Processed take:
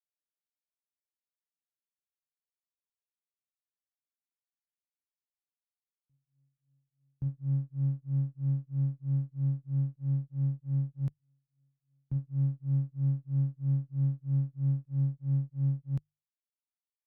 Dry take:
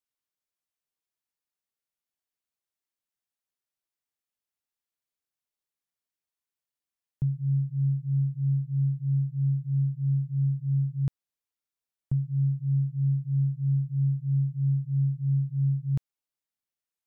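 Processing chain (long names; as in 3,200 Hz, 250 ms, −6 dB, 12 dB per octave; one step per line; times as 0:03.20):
lower of the sound and its delayed copy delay 0.37 ms
mains-hum notches 50/100/150 Hz
backwards echo 1,124 ms −17.5 dB
expander for the loud parts 2.5 to 1, over −44 dBFS
level −2 dB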